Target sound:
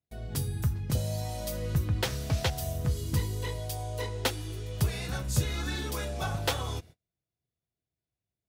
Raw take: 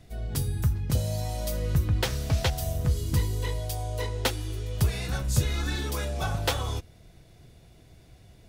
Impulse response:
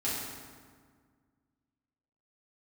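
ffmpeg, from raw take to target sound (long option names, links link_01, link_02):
-af "highpass=69,agate=range=-35dB:threshold=-46dB:ratio=16:detection=peak,volume=-2dB"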